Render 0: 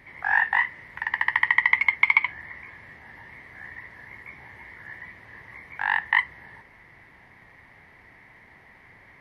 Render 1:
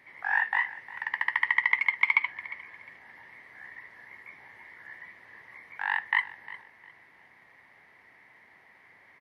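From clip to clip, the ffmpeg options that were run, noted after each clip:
ffmpeg -i in.wav -af "highpass=frequency=410:poles=1,aecho=1:1:355|710|1065:0.133|0.0387|0.0112,volume=-4.5dB" out.wav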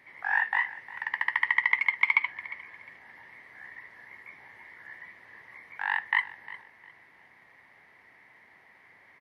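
ffmpeg -i in.wav -af anull out.wav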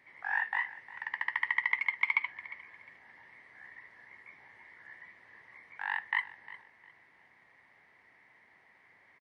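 ffmpeg -i in.wav -af "aresample=22050,aresample=44100,volume=-5.5dB" out.wav

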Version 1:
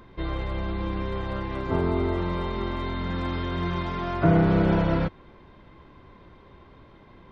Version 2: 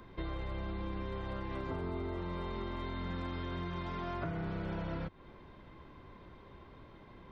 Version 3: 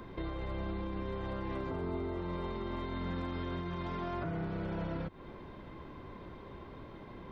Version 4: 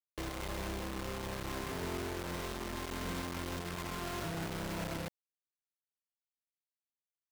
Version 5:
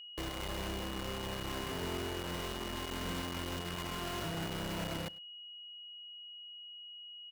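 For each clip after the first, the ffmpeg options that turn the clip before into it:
ffmpeg -i in.wav -filter_complex "[0:a]acrossover=split=120|1000[link_01][link_02][link_03];[link_02]alimiter=limit=-20.5dB:level=0:latency=1[link_04];[link_01][link_04][link_03]amix=inputs=3:normalize=0,acompressor=threshold=-32dB:ratio=6,volume=-3.5dB" out.wav
ffmpeg -i in.wav -af "equalizer=frequency=340:width=0.4:gain=4,alimiter=level_in=9dB:limit=-24dB:level=0:latency=1:release=90,volume=-9dB,volume=3.5dB" out.wav
ffmpeg -i in.wav -af "acrusher=bits=5:mix=0:aa=0.000001,volume=-3.5dB" out.wav
ffmpeg -i in.wav -af "aeval=exprs='val(0)+0.00447*sin(2*PI*2900*n/s)':channel_layout=same,aecho=1:1:102:0.0708" out.wav

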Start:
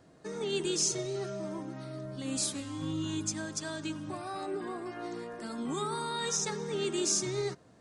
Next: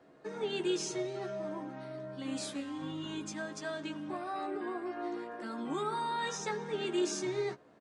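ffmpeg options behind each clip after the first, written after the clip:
ffmpeg -i in.wav -filter_complex "[0:a]acrossover=split=220 3400:gain=0.224 1 0.2[link_01][link_02][link_03];[link_01][link_02][link_03]amix=inputs=3:normalize=0,asplit=2[link_04][link_05];[link_05]adelay=14,volume=-5.5dB[link_06];[link_04][link_06]amix=inputs=2:normalize=0" out.wav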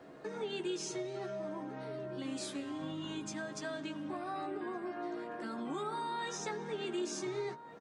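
ffmpeg -i in.wav -filter_complex "[0:a]acompressor=threshold=-52dB:ratio=2,asplit=2[link_01][link_02];[link_02]adelay=1458,volume=-11dB,highshelf=frequency=4000:gain=-32.8[link_03];[link_01][link_03]amix=inputs=2:normalize=0,volume=7dB" out.wav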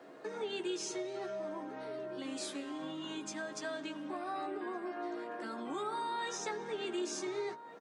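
ffmpeg -i in.wav -af "highpass=270,volume=1dB" out.wav

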